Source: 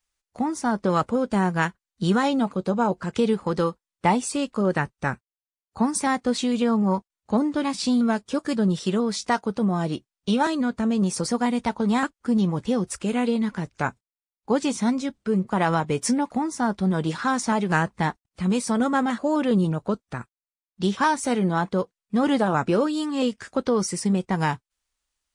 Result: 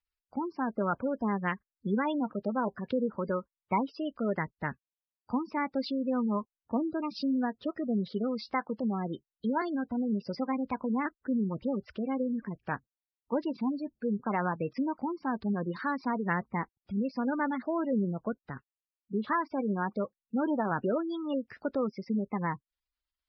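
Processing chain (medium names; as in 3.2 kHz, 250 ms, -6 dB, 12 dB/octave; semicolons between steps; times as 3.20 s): spectral gate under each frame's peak -20 dB strong; speed mistake 44.1 kHz file played as 48 kHz; resampled via 11.025 kHz; trim -8 dB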